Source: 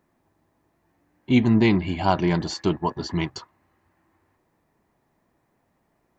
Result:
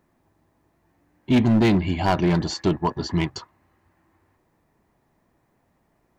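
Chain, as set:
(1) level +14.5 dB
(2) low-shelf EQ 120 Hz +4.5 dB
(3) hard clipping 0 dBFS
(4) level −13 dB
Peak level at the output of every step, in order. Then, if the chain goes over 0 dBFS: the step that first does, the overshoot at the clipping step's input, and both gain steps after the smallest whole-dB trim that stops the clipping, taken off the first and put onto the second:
+9.0, +9.5, 0.0, −13.0 dBFS
step 1, 9.5 dB
step 1 +4.5 dB, step 4 −3 dB

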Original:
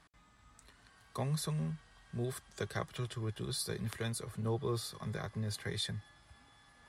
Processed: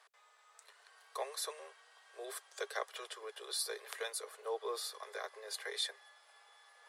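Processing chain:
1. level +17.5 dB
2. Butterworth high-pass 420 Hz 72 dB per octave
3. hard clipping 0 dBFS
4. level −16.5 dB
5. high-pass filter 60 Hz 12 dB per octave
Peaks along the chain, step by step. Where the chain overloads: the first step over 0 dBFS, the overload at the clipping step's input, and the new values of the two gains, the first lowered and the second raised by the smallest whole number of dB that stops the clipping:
−4.0, −6.0, −6.0, −22.5, −22.5 dBFS
no step passes full scale

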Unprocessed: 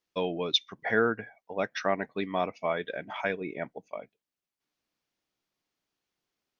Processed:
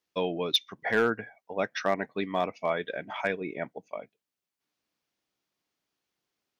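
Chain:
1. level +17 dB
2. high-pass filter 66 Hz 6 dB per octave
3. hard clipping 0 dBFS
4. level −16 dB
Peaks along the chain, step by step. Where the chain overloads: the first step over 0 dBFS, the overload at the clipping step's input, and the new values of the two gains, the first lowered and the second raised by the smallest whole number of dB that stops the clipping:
+6.0, +6.0, 0.0, −16.0 dBFS
step 1, 6.0 dB
step 1 +11 dB, step 4 −10 dB

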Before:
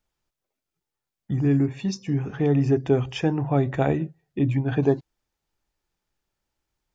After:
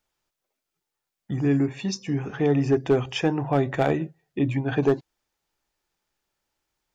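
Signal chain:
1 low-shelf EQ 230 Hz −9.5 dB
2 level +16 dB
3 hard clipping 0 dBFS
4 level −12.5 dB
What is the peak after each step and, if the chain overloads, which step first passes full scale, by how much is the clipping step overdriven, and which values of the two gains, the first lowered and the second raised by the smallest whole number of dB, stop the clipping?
−10.0, +6.0, 0.0, −12.5 dBFS
step 2, 6.0 dB
step 2 +10 dB, step 4 −6.5 dB

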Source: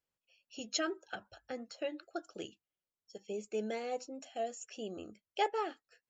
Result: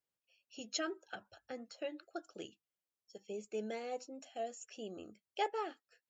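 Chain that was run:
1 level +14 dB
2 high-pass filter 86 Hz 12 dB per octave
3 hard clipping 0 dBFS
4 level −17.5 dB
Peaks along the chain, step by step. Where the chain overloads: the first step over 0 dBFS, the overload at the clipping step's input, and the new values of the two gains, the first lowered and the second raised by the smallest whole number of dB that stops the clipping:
−6.0, −6.0, −6.0, −23.5 dBFS
no step passes full scale

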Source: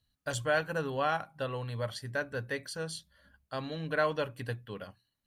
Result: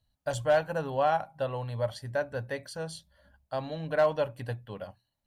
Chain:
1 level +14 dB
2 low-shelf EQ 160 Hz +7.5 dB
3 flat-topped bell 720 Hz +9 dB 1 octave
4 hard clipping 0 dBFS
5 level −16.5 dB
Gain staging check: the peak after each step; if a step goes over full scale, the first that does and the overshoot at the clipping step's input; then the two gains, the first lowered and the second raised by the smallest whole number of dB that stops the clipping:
−3.0, −2.5, +3.5, 0.0, −16.5 dBFS
step 3, 3.5 dB
step 1 +10 dB, step 5 −12.5 dB

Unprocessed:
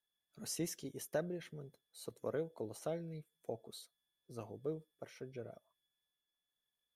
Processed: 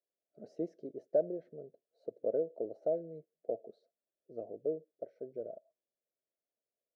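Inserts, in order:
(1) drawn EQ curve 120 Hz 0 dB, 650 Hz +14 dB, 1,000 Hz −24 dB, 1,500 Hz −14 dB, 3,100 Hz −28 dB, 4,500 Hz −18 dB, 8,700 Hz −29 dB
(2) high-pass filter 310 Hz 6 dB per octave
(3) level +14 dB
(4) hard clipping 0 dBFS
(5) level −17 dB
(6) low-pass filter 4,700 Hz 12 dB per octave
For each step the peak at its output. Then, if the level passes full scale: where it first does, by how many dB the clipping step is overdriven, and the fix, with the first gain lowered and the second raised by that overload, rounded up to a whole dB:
−14.5, −16.0, −2.0, −2.0, −19.0, −19.0 dBFS
no step passes full scale

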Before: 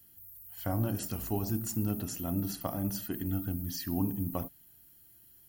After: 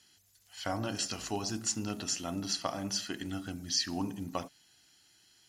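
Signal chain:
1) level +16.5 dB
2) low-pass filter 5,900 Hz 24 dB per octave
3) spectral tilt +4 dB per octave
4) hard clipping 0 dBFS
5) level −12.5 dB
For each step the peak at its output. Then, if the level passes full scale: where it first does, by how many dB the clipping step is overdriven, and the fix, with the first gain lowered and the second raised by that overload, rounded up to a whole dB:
−2.5, −3.5, −4.0, −4.0, −16.5 dBFS
no step passes full scale

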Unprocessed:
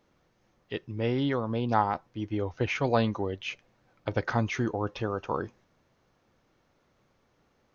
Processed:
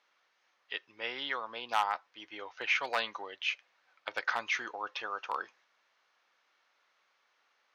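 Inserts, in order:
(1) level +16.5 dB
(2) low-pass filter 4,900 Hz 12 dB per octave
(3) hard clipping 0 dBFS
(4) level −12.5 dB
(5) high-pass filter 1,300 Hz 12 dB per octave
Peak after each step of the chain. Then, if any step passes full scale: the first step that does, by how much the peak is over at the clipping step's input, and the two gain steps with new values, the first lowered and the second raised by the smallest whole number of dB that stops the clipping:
+6.5, +6.5, 0.0, −12.5, −14.5 dBFS
step 1, 6.5 dB
step 1 +9.5 dB, step 4 −5.5 dB

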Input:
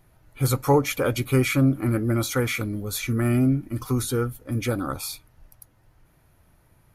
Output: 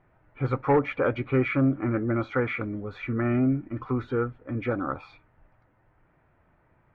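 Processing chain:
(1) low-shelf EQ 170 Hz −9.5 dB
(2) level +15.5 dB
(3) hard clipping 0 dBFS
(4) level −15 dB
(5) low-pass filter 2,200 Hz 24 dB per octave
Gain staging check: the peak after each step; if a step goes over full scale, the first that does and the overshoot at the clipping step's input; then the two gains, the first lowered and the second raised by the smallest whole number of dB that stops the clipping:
−9.5, +6.0, 0.0, −15.0, −14.0 dBFS
step 2, 6.0 dB
step 2 +9.5 dB, step 4 −9 dB

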